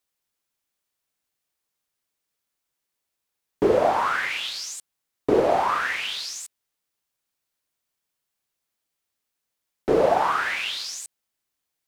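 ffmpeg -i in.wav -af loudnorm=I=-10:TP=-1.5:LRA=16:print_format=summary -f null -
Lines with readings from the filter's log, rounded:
Input Integrated:    -23.5 LUFS
Input True Peak:      -8.0 dBTP
Input LRA:             8.8 LU
Input Threshold:     -34.0 LUFS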